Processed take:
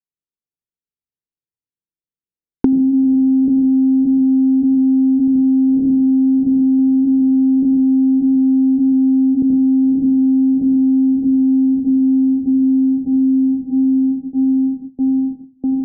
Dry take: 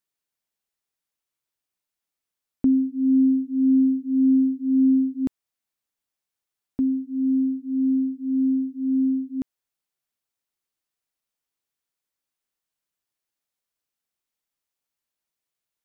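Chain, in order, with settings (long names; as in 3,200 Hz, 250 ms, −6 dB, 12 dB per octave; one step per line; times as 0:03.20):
feedback delay with all-pass diffusion 480 ms, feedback 73%, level −7 dB
leveller curve on the samples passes 5
in parallel at +2 dB: downward compressor, threshold −18 dBFS, peak gain reduction 8.5 dB
on the sum: noise gate with hold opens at −27 dBFS
on a send at −9 dB: convolution reverb RT60 0.30 s, pre-delay 76 ms
on the sum: leveller curve on the samples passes 2
elliptic low-pass filter 500 Hz, stop band 70 dB
multiband upward and downward compressor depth 100%
level −9.5 dB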